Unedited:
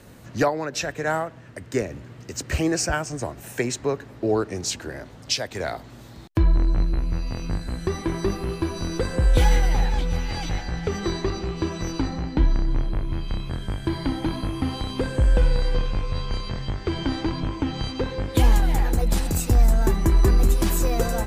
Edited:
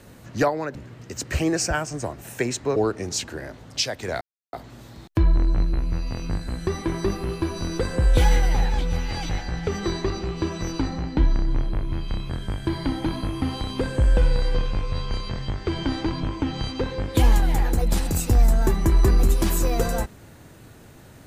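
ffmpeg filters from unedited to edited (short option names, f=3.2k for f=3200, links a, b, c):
-filter_complex "[0:a]asplit=4[a][b][c][d];[a]atrim=end=0.752[e];[b]atrim=start=1.938:end=3.952[f];[c]atrim=start=4.278:end=5.73,asetpts=PTS-STARTPTS,afade=t=out:st=1.448:d=0.004:c=hsin,apad=pad_dur=0.32[g];[d]atrim=start=5.73,asetpts=PTS-STARTPTS,afade=t=in:d=0.004:c=hsin[h];[e][f]acrossfade=d=0.004:c1=hsin:c2=hsin[i];[g][h]concat=n=2:v=0:a=1[j];[i][j]acrossfade=d=0.004:c1=hsin:c2=hsin"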